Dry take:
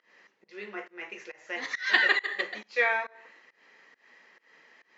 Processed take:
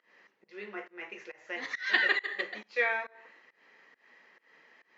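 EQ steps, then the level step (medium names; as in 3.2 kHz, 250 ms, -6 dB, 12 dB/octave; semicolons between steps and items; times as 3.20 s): treble shelf 6.7 kHz -11.5 dB; dynamic bell 940 Hz, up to -4 dB, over -40 dBFS, Q 1.2; -1.5 dB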